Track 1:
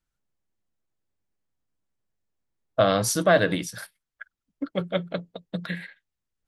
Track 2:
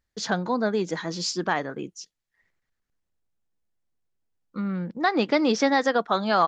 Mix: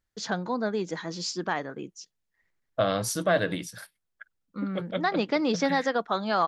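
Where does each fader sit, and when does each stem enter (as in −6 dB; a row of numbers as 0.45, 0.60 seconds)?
−5.0, −4.0 decibels; 0.00, 0.00 seconds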